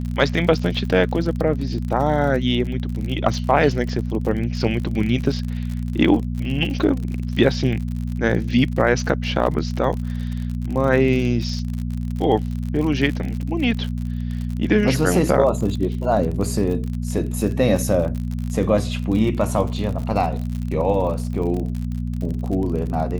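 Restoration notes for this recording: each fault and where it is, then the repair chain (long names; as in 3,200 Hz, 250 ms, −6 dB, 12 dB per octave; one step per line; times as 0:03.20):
surface crackle 49 per second −27 dBFS
mains hum 60 Hz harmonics 4 −25 dBFS
0:20.02: drop-out 3.2 ms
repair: click removal
hum removal 60 Hz, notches 4
repair the gap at 0:20.02, 3.2 ms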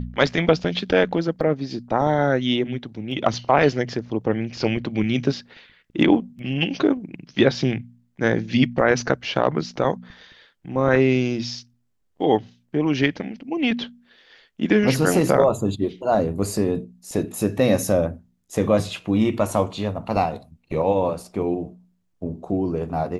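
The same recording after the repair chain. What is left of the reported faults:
none of them is left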